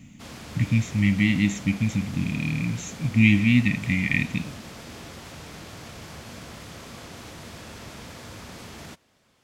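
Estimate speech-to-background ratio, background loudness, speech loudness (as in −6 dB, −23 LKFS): 18.0 dB, −41.0 LKFS, −23.0 LKFS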